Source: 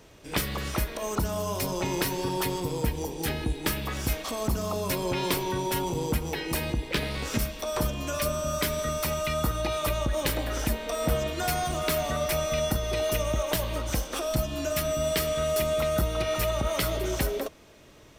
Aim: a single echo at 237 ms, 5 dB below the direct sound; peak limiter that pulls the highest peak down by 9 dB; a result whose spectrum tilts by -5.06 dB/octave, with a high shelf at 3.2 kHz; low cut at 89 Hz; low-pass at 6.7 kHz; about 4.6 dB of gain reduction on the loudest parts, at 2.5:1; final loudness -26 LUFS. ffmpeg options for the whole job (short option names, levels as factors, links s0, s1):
-af "highpass=89,lowpass=6700,highshelf=f=3200:g=-5.5,acompressor=threshold=0.0316:ratio=2.5,alimiter=level_in=1.12:limit=0.0631:level=0:latency=1,volume=0.891,aecho=1:1:237:0.562,volume=2.37"